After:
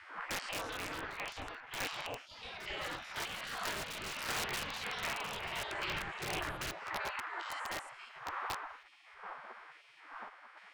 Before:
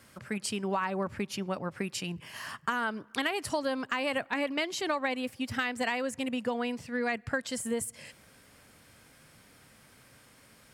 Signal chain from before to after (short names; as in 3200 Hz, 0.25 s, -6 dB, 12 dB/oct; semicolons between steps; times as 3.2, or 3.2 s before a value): stepped spectrum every 0.1 s; wind noise 270 Hz -39 dBFS; LPF 1500 Hz 12 dB/oct; spectral gate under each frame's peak -25 dB weak; wrapped overs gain 44.5 dB; random-step tremolo; echoes that change speed 0.306 s, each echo +4 st, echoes 2, each echo -6 dB; Doppler distortion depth 0.34 ms; gain +17.5 dB